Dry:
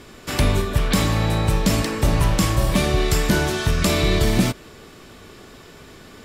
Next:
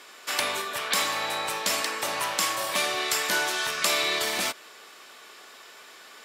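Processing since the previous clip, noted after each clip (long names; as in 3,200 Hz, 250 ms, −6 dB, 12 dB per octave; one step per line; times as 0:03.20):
high-pass filter 810 Hz 12 dB per octave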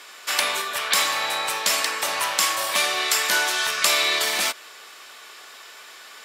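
low-shelf EQ 480 Hz −10 dB
level +5.5 dB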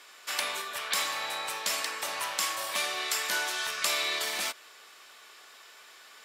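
surface crackle 95 per second −50 dBFS
level −9 dB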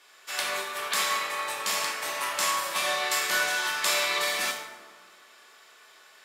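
dense smooth reverb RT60 1.9 s, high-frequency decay 0.45×, DRR −4 dB
expander for the loud parts 1.5 to 1, over −37 dBFS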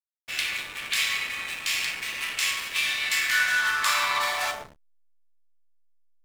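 high-pass filter sweep 2,400 Hz → 210 Hz, 0:03.03–0:06.04
slack as between gear wheels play −29 dBFS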